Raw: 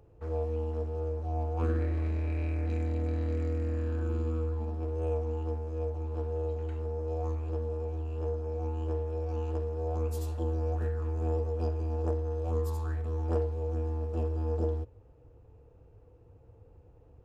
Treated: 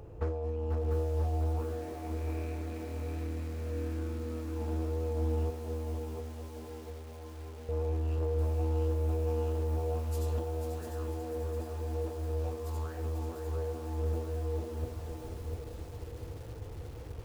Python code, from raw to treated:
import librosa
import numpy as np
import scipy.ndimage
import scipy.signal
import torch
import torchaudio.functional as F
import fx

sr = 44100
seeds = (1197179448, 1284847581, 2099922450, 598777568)

y = fx.over_compress(x, sr, threshold_db=-38.0, ratio=-1.0)
y = fx.stiff_resonator(y, sr, f0_hz=120.0, decay_s=0.21, stiffness=0.03, at=(5.5, 7.69))
y = fx.echo_feedback(y, sr, ms=492, feedback_pct=48, wet_db=-7.0)
y = fx.echo_crushed(y, sr, ms=698, feedback_pct=55, bits=9, wet_db=-6.0)
y = F.gain(torch.from_numpy(y), 4.0).numpy()